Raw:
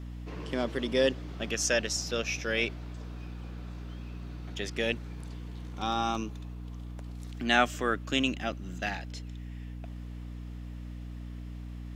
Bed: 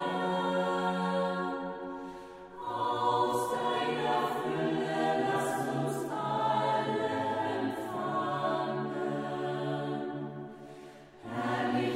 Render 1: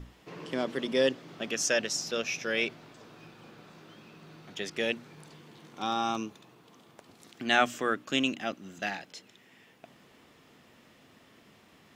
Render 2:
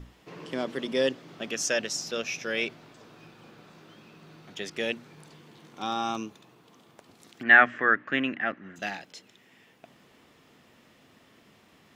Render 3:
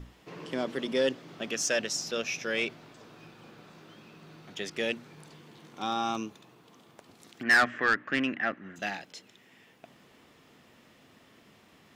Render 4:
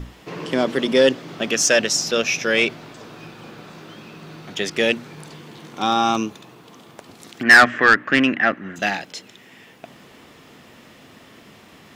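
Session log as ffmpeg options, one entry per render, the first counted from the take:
-af "bandreject=f=60:t=h:w=6,bandreject=f=120:t=h:w=6,bandreject=f=180:t=h:w=6,bandreject=f=240:t=h:w=6,bandreject=f=300:t=h:w=6"
-filter_complex "[0:a]asettb=1/sr,asplit=3[a][b][c];[a]atrim=end=7.434[d];[b]atrim=start=7.43:end=8.76,asetpts=PTS-STARTPTS,afade=t=in:d=0.004:c=qsin,afade=t=out:st=1.326:d=0.004:c=qsin,lowpass=f=1.8k:t=q:w=5.7[e];[c]atrim=start=8.756[f];[d][e]acrossfade=d=0.004:c1=hsin:c2=qsin[g];[g][f]acrossfade=d=0.004:c1=qsin:c2=hsin"
-af "asoftclip=type=tanh:threshold=-16.5dB"
-af "volume=12dB"

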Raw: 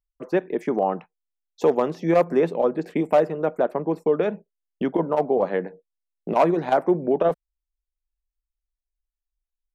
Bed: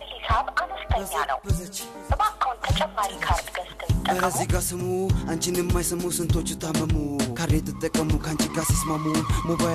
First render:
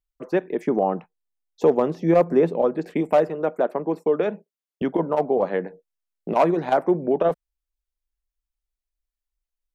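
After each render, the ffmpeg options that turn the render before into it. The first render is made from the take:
-filter_complex "[0:a]asettb=1/sr,asplit=3[a][b][c];[a]atrim=end=0.654[d];[b]atrim=start=0.65:end=2.65,asetpts=PTS-STARTPTS,afade=t=in:d=0.004:c=qsin,afade=t=out:st=1.996:d=0.004:c=qsin,tiltshelf=f=760:g=3.5[e];[c]atrim=start=2.646[f];[d][e]acrossfade=d=0.004:c1=hsin:c2=qsin[g];[g][f]acrossfade=d=0.004:c1=qsin:c2=hsin,asettb=1/sr,asplit=3[h][i][j];[h]atrim=end=3.294[k];[i]atrim=start=3.29:end=4.82,asetpts=PTS-STARTPTS,afade=t=in:d=0.004:c=qsin,afade=t=out:st=1.526:d=0.004:c=qsin,highpass=170[l];[j]atrim=start=4.816[m];[k][l]acrossfade=d=0.004:c1=hsin:c2=qsin[n];[n][m]acrossfade=d=0.004:c1=qsin:c2=hsin"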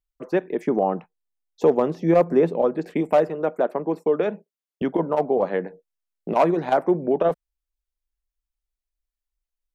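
-af anull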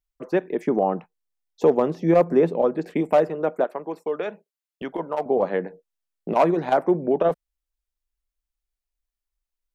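-filter_complex "[0:a]asettb=1/sr,asplit=3[a][b][c];[a]atrim=end=3.644[d];[b]atrim=start=3.64:end=5.26,asetpts=PTS-STARTPTS,afade=t=in:d=0.004:c=qsin,afade=t=out:st=1.616:d=0.004:c=qsin,equalizer=f=160:w=0.33:g=-10.5[e];[c]atrim=start=5.256[f];[d][e]acrossfade=d=0.004:c1=hsin:c2=qsin[g];[g][f]acrossfade=d=0.004:c1=qsin:c2=hsin"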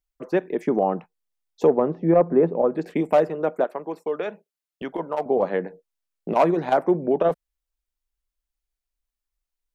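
-filter_complex "[0:a]asplit=3[a][b][c];[a]afade=t=out:st=1.66:d=0.02[d];[b]lowpass=1.5k,afade=t=in:st=1.66:d=0.02,afade=t=out:st=2.69:d=0.02[e];[c]afade=t=in:st=2.69:d=0.02[f];[d][e][f]amix=inputs=3:normalize=0"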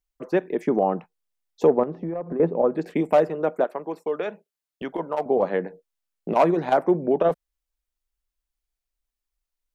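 -filter_complex "[0:a]asettb=1/sr,asplit=3[a][b][c];[a]atrim=end=1.834[d];[b]atrim=start=1.83:end=2.4,asetpts=PTS-STARTPTS,afade=t=in:d=0.004:c=qsin,afade=t=out:st=0.566:d=0.004:c=qsin,acompressor=threshold=-25dB:ratio=16:attack=3.2:release=140:knee=1:detection=peak[e];[c]atrim=start=2.396[f];[d][e]acrossfade=d=0.004:c1=hsin:c2=qsin[g];[g][f]acrossfade=d=0.004:c1=qsin:c2=hsin"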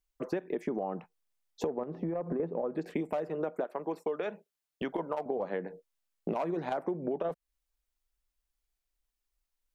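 -af "alimiter=limit=-14.5dB:level=0:latency=1:release=158,acompressor=threshold=-30dB:ratio=6"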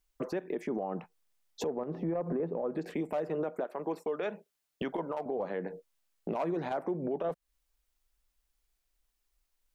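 -filter_complex "[0:a]asplit=2[a][b];[b]acompressor=threshold=-41dB:ratio=6,volume=-1dB[c];[a][c]amix=inputs=2:normalize=0,alimiter=level_in=1dB:limit=-24dB:level=0:latency=1:release=31,volume=-1dB"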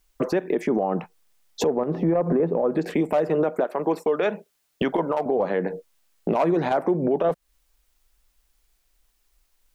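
-af "volume=11.5dB"

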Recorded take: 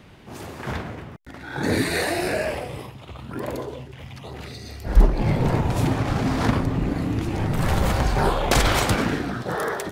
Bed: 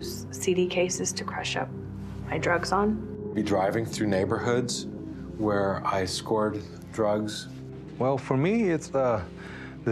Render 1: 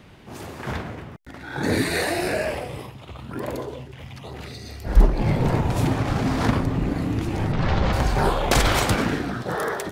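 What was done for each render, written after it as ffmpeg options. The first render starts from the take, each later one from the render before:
-filter_complex "[0:a]asettb=1/sr,asplit=3[a][b][c];[a]atrim=end=7.524[d];[b]atrim=start=7.52:end=7.93,asetpts=PTS-STARTPTS,afade=t=in:d=0.004:c=qsin,afade=t=out:st=0.406:d=0.004:c=qsin,lowpass=f=5.1k:w=0.5412,lowpass=f=5.1k:w=1.3066[e];[c]atrim=start=7.926[f];[d][e]acrossfade=d=0.004:c1=hsin:c2=qsin[g];[g][f]acrossfade=d=0.004:c1=qsin:c2=hsin"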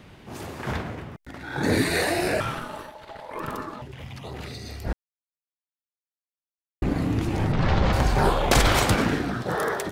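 -filter_complex "[0:a]asettb=1/sr,asplit=3[a][b][c];[a]atrim=end=2.404[d];[b]atrim=start=2.4:end=3.82,asetpts=PTS-STARTPTS,afade=t=in:d=0.004:c=qsin,afade=t=out:st=1.416:d=0.004:c=qsin,aeval=exprs='val(0)*sin(2*PI*740*n/s)':c=same[e];[c]atrim=start=3.816[f];[d][e]acrossfade=d=0.004:c1=hsin:c2=qsin[g];[g][f]acrossfade=d=0.004:c1=qsin:c2=hsin,asplit=3[h][i][j];[h]atrim=end=4.93,asetpts=PTS-STARTPTS,afade=t=out:st=4.926:d=0.004:c=hsin[k];[i]atrim=start=4.93:end=6.82,asetpts=PTS-STARTPTS,volume=0[l];[j]atrim=start=6.82,asetpts=PTS-STARTPTS,afade=t=in:d=0.004:c=hsin[m];[k][l][m]concat=n=3:v=0:a=1"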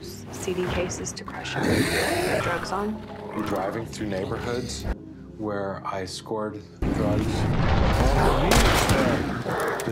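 -filter_complex "[1:a]volume=-3.5dB[a];[0:a][a]amix=inputs=2:normalize=0"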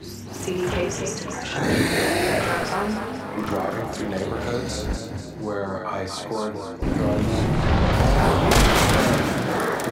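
-filter_complex "[0:a]asplit=2[a][b];[b]adelay=42,volume=-4dB[c];[a][c]amix=inputs=2:normalize=0,asplit=7[d][e][f][g][h][i][j];[e]adelay=243,afreqshift=44,volume=-7dB[k];[f]adelay=486,afreqshift=88,volume=-12.8dB[l];[g]adelay=729,afreqshift=132,volume=-18.7dB[m];[h]adelay=972,afreqshift=176,volume=-24.5dB[n];[i]adelay=1215,afreqshift=220,volume=-30.4dB[o];[j]adelay=1458,afreqshift=264,volume=-36.2dB[p];[d][k][l][m][n][o][p]amix=inputs=7:normalize=0"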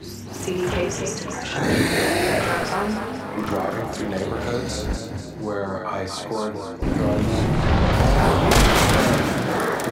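-af "volume=1dB"

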